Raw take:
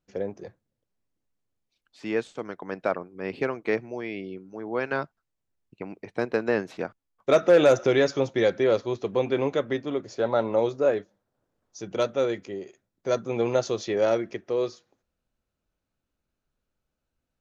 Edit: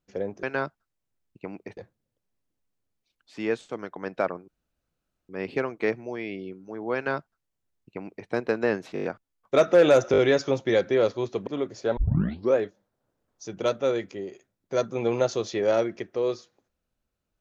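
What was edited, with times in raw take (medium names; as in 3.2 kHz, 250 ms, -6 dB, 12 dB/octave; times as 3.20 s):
3.14 s: insert room tone 0.81 s
4.80–6.14 s: copy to 0.43 s
6.79 s: stutter 0.02 s, 6 plays
7.87 s: stutter 0.02 s, 4 plays
9.16–9.81 s: delete
10.31 s: tape start 0.59 s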